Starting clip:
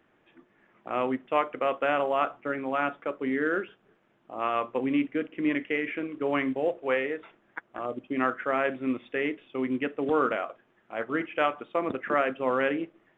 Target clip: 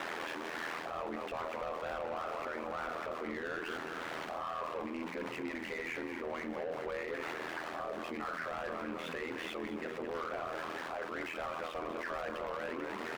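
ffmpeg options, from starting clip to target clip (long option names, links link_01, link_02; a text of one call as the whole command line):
ffmpeg -i in.wav -filter_complex "[0:a]aeval=exprs='val(0)+0.5*0.0224*sgn(val(0))':channel_layout=same,lowshelf=frequency=170:gain=-10.5,asplit=7[link_01][link_02][link_03][link_04][link_05][link_06][link_07];[link_02]adelay=214,afreqshift=-53,volume=-12dB[link_08];[link_03]adelay=428,afreqshift=-106,volume=-16.9dB[link_09];[link_04]adelay=642,afreqshift=-159,volume=-21.8dB[link_10];[link_05]adelay=856,afreqshift=-212,volume=-26.6dB[link_11];[link_06]adelay=1070,afreqshift=-265,volume=-31.5dB[link_12];[link_07]adelay=1284,afreqshift=-318,volume=-36.4dB[link_13];[link_01][link_08][link_09][link_10][link_11][link_12][link_13]amix=inputs=7:normalize=0,asplit=2[link_14][link_15];[link_15]aeval=exprs='(mod(6.31*val(0)+1,2)-1)/6.31':channel_layout=same,volume=-4dB[link_16];[link_14][link_16]amix=inputs=2:normalize=0,asplit=2[link_17][link_18];[link_18]highpass=frequency=720:poles=1,volume=22dB,asoftclip=type=tanh:threshold=-9.5dB[link_19];[link_17][link_19]amix=inputs=2:normalize=0,lowpass=frequency=1400:poles=1,volume=-6dB,bandreject=frequency=50:width_type=h:width=6,bandreject=frequency=100:width_type=h:width=6,bandreject=frequency=150:width_type=h:width=6,bandreject=frequency=200:width_type=h:width=6,bandreject=frequency=250:width_type=h:width=6,bandreject=frequency=300:width_type=h:width=6,bandreject=frequency=350:width_type=h:width=6,bandreject=frequency=400:width_type=h:width=6,aeval=exprs='val(0)*sin(2*PI*41*n/s)':channel_layout=same,areverse,acompressor=threshold=-34dB:ratio=6,areverse,alimiter=level_in=10dB:limit=-24dB:level=0:latency=1:release=474,volume=-10dB,volume=3dB" out.wav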